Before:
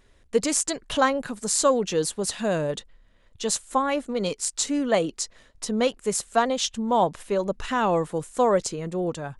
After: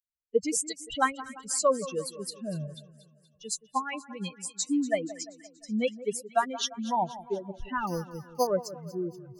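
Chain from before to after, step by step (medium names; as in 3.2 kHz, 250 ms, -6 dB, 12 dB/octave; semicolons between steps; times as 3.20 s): expander on every frequency bin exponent 3; 7.87–8.47 s: careless resampling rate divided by 8×, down none, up hold; two-band feedback delay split 1.5 kHz, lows 173 ms, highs 239 ms, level -15.5 dB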